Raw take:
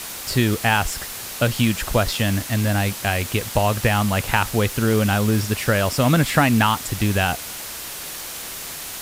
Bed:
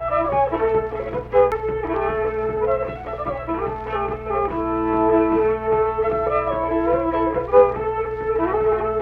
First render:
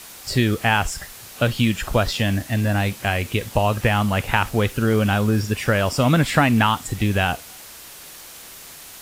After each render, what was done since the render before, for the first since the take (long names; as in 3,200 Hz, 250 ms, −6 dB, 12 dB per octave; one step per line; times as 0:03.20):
noise reduction from a noise print 8 dB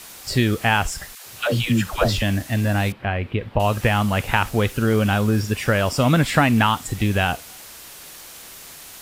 0:01.15–0:02.22: all-pass dispersion lows, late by 114 ms, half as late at 530 Hz
0:02.92–0:03.60: high-frequency loss of the air 440 metres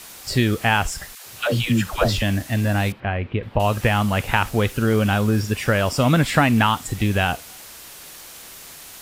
0:03.00–0:03.43: high-frequency loss of the air 130 metres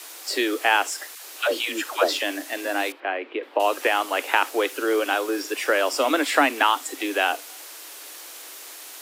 Butterworth high-pass 280 Hz 96 dB per octave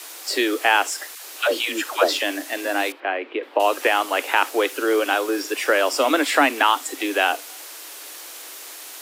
level +2.5 dB
brickwall limiter −3 dBFS, peak gain reduction 3 dB